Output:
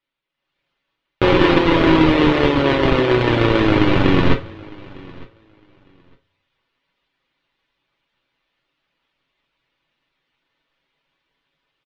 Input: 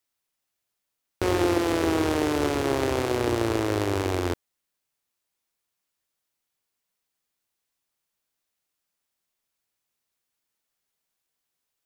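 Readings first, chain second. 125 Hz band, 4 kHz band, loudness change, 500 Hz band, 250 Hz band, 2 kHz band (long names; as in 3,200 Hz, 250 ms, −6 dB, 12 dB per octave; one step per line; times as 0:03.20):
+11.5 dB, +11.0 dB, +10.0 dB, +8.5 dB, +10.5 dB, +12.0 dB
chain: each half-wave held at its own peak
reverb reduction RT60 0.54 s
Chebyshev low-pass filter 3,400 Hz, order 3
notch filter 710 Hz, Q 12
comb filter 7.3 ms, depth 54%
automatic gain control gain up to 12 dB
on a send: repeating echo 906 ms, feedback 18%, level −23 dB
on the sum: coupled-rooms reverb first 0.27 s, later 1.7 s, from −26 dB, DRR 4 dB
level −1.5 dB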